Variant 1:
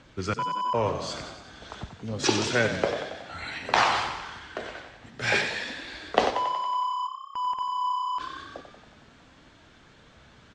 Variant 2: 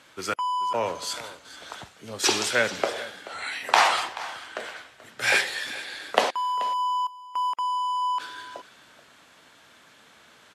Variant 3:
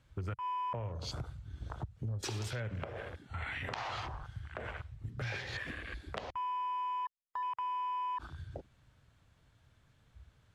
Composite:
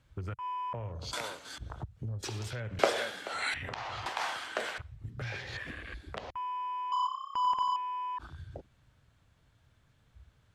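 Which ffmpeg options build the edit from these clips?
-filter_complex "[1:a]asplit=3[a][b][c];[2:a]asplit=5[d][e][f][g][h];[d]atrim=end=1.132[i];[a]atrim=start=1.128:end=1.582[j];[e]atrim=start=1.578:end=2.792[k];[b]atrim=start=2.788:end=3.542[l];[f]atrim=start=3.538:end=4.062[m];[c]atrim=start=4.058:end=4.782[n];[g]atrim=start=4.778:end=6.922[o];[0:a]atrim=start=6.918:end=7.762[p];[h]atrim=start=7.758[q];[i][j]acrossfade=d=0.004:c1=hsin:c2=hsin[r];[r][k]acrossfade=d=0.004:c1=hsin:c2=hsin[s];[s][l]acrossfade=d=0.004:c1=hsin:c2=hsin[t];[t][m]acrossfade=d=0.004:c1=hsin:c2=hsin[u];[u][n]acrossfade=d=0.004:c1=hsin:c2=hsin[v];[v][o]acrossfade=d=0.004:c1=hsin:c2=hsin[w];[w][p]acrossfade=d=0.004:c1=hsin:c2=hsin[x];[x][q]acrossfade=d=0.004:c1=hsin:c2=hsin"

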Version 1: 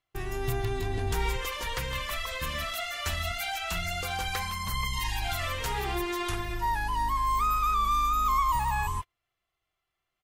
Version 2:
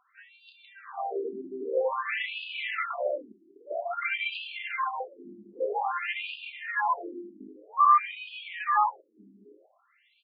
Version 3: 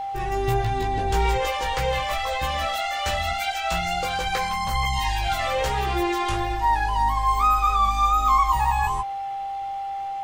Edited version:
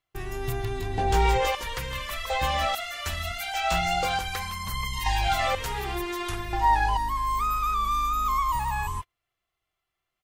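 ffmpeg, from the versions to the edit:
-filter_complex "[2:a]asplit=5[a][b][c][d][e];[0:a]asplit=6[f][g][h][i][j][k];[f]atrim=end=0.982[l];[a]atrim=start=0.978:end=1.552[m];[g]atrim=start=1.548:end=2.302[n];[b]atrim=start=2.298:end=2.752[o];[h]atrim=start=2.748:end=3.542[p];[c]atrim=start=3.538:end=4.192[q];[i]atrim=start=4.188:end=5.062[r];[d]atrim=start=5.058:end=5.552[s];[j]atrim=start=5.548:end=6.532[t];[e]atrim=start=6.528:end=6.972[u];[k]atrim=start=6.968[v];[l][m]acrossfade=d=0.004:c1=hsin:c2=hsin[w];[w][n]acrossfade=d=0.004:c1=hsin:c2=hsin[x];[x][o]acrossfade=d=0.004:c1=hsin:c2=hsin[y];[y][p]acrossfade=d=0.004:c1=hsin:c2=hsin[z];[z][q]acrossfade=d=0.004:c1=hsin:c2=hsin[aa];[aa][r]acrossfade=d=0.004:c1=hsin:c2=hsin[ab];[ab][s]acrossfade=d=0.004:c1=hsin:c2=hsin[ac];[ac][t]acrossfade=d=0.004:c1=hsin:c2=hsin[ad];[ad][u]acrossfade=d=0.004:c1=hsin:c2=hsin[ae];[ae][v]acrossfade=d=0.004:c1=hsin:c2=hsin"

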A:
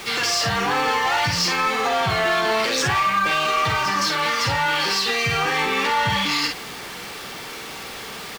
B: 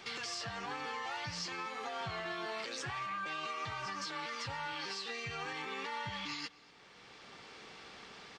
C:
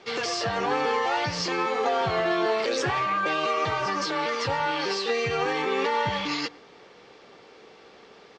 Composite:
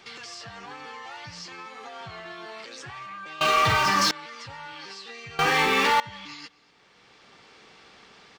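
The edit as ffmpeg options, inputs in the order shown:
-filter_complex "[0:a]asplit=2[a][b];[1:a]asplit=3[c][d][e];[c]atrim=end=3.412[f];[a]atrim=start=3.408:end=4.112[g];[d]atrim=start=4.108:end=5.392[h];[b]atrim=start=5.388:end=6.002[i];[e]atrim=start=5.998[j];[f][g]acrossfade=d=0.004:c1=hsin:c2=hsin[k];[k][h]acrossfade=d=0.004:c1=hsin:c2=hsin[l];[l][i]acrossfade=d=0.004:c1=hsin:c2=hsin[m];[m][j]acrossfade=d=0.004:c1=hsin:c2=hsin"

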